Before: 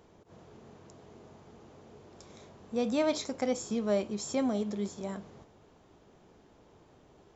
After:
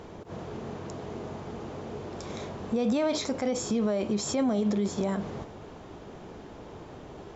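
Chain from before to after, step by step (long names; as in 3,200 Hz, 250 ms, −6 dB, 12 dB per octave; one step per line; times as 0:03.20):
in parallel at +2.5 dB: downward compressor, threshold −39 dBFS, peak gain reduction 14.5 dB
on the sum: brickwall limiter −27.5 dBFS, peak gain reduction 12 dB
high-shelf EQ 6,600 Hz −10 dB
level +8 dB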